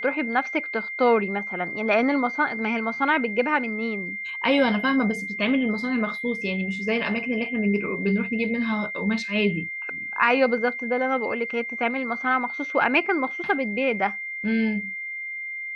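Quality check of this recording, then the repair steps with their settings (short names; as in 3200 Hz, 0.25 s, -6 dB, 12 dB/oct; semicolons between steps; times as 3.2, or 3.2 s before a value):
tone 2100 Hz -30 dBFS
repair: notch 2100 Hz, Q 30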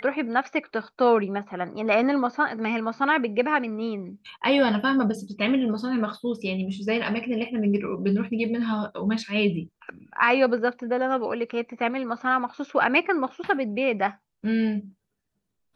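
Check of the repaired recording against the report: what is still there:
none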